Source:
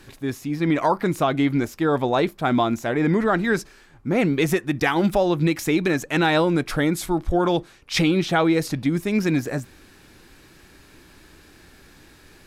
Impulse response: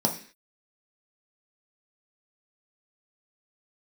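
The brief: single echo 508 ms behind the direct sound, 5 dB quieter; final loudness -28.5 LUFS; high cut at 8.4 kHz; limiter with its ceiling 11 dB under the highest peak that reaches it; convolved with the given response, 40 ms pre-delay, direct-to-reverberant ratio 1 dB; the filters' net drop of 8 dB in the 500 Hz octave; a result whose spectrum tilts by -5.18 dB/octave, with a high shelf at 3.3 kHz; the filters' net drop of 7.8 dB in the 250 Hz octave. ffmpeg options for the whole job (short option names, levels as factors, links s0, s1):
-filter_complex "[0:a]lowpass=8400,equalizer=f=250:t=o:g=-8.5,equalizer=f=500:t=o:g=-8,highshelf=f=3300:g=8,alimiter=limit=0.141:level=0:latency=1,aecho=1:1:508:0.562,asplit=2[s0][s1];[1:a]atrim=start_sample=2205,adelay=40[s2];[s1][s2]afir=irnorm=-1:irlink=0,volume=0.266[s3];[s0][s3]amix=inputs=2:normalize=0,volume=0.447"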